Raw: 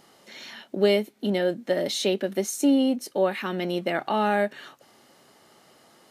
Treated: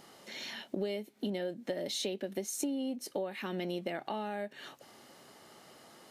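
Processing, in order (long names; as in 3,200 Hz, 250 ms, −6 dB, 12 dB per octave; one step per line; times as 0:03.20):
downward compressor 12 to 1, threshold −32 dBFS, peak gain reduction 17 dB
dynamic equaliser 1,300 Hz, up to −5 dB, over −56 dBFS, Q 2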